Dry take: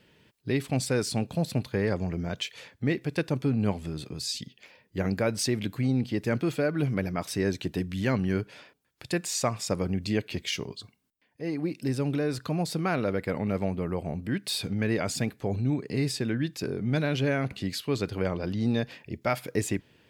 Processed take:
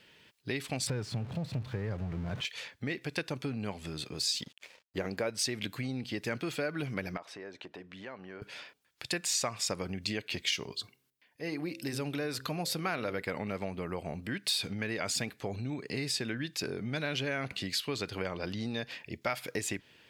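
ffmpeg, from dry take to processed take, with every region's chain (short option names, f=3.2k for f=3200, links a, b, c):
-filter_complex "[0:a]asettb=1/sr,asplit=3[a][b][c];[a]atrim=end=0.874[d];[b]atrim=start=0.87:end=2.45,asetpts=PTS-STARTPTS,afade=t=in:d=0.004:c=qsin,afade=t=out:st=1.576:d=0.004:c=qsin,aeval=exprs='val(0)+0.5*0.0266*sgn(val(0))':c=same,lowpass=f=1.3k:p=1,equalizer=f=110:w=1.1:g=14[e];[c]atrim=start=2.446[f];[d][e]acrossfade=d=0.004:c1=hsin:c2=qsin[g];[g][f]acrossfade=d=0.004:c1=qsin:c2=hsin,asettb=1/sr,asplit=3[h][i][j];[h]atrim=end=4.134[k];[i]atrim=start=4.13:end=5.3,asetpts=PTS-STARTPTS,afade=t=in:d=0.004:c=qsin,afade=t=out:st=1.166:d=0.004:c=qsin,equalizer=f=450:w=0.81:g=6.5,aeval=exprs='sgn(val(0))*max(abs(val(0))-0.00178,0)':c=same[l];[j]atrim=start=5.296[m];[k][l]acrossfade=d=0.004:c1=hsin:c2=qsin[n];[n][m]acrossfade=d=0.004:c1=qsin:c2=hsin,asettb=1/sr,asplit=3[o][p][q];[o]atrim=end=7.174[r];[p]atrim=start=7.17:end=8.42,asetpts=PTS-STARTPTS,afade=t=in:d=0.004:c=qsin,afade=t=out:st=1.246:d=0.004:c=qsin,bandpass=f=740:t=q:w=1,acompressor=threshold=-39dB:ratio=4:attack=3.2:release=140:knee=1:detection=peak[s];[q]atrim=start=8.416[t];[r][s]acrossfade=d=0.004:c1=hsin:c2=qsin[u];[u][t]acrossfade=d=0.004:c1=qsin:c2=hsin,asettb=1/sr,asplit=3[v][w][x];[v]atrim=end=10.714[y];[w]atrim=start=10.71:end=13.22,asetpts=PTS-STARTPTS,afade=t=in:d=0.004:c=qsin,afade=t=out:st=2.506:d=0.004:c=qsin,equalizer=f=12k:w=4.2:g=9,bandreject=f=66.26:t=h:w=4,bandreject=f=132.52:t=h:w=4,bandreject=f=198.78:t=h:w=4,bandreject=f=265.04:t=h:w=4,bandreject=f=331.3:t=h:w=4,bandreject=f=397.56:t=h:w=4,bandreject=f=463.82:t=h:w=4,bandreject=f=530.08:t=h:w=4[z];[x]atrim=start=13.216[aa];[y][z]acrossfade=d=0.004:c1=hsin:c2=qsin[ab];[ab][aa]acrossfade=d=0.004:c1=qsin:c2=hsin,equalizer=f=3.4k:t=o:w=2.8:g=5,acompressor=threshold=-27dB:ratio=6,lowshelf=f=420:g=-7"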